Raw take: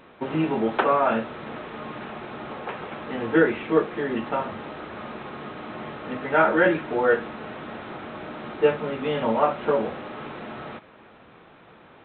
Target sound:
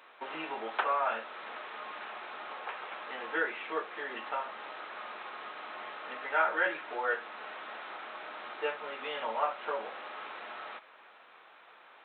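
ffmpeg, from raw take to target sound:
ffmpeg -i in.wav -filter_complex "[0:a]highpass=840,asplit=2[link_01][link_02];[link_02]acompressor=threshold=-37dB:ratio=6,volume=-2dB[link_03];[link_01][link_03]amix=inputs=2:normalize=0,volume=-7dB" out.wav

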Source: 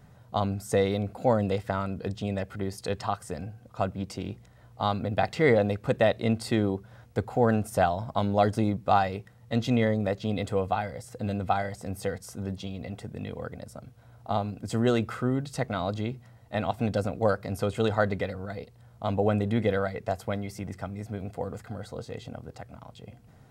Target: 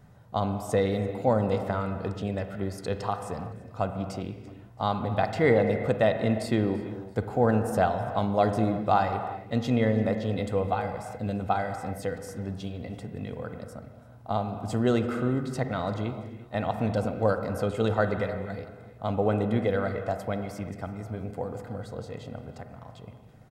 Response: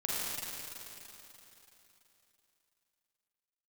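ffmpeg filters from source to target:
-filter_complex "[0:a]aecho=1:1:337|674|1011:0.0708|0.0333|0.0156,asplit=2[link_01][link_02];[1:a]atrim=start_sample=2205,afade=type=out:start_time=0.43:duration=0.01,atrim=end_sample=19404,lowpass=2300[link_03];[link_02][link_03]afir=irnorm=-1:irlink=0,volume=-9dB[link_04];[link_01][link_04]amix=inputs=2:normalize=0,volume=-2.5dB"

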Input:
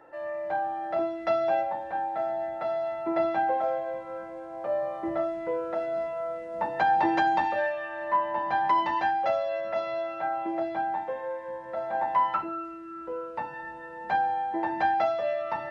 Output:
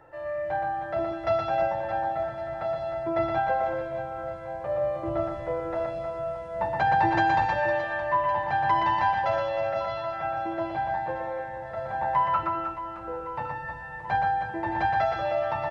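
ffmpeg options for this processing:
ffmpeg -i in.wav -af "lowshelf=frequency=160:width_type=q:width=1.5:gain=12.5,aecho=1:1:120|312|619.2|1111|1897:0.631|0.398|0.251|0.158|0.1" out.wav

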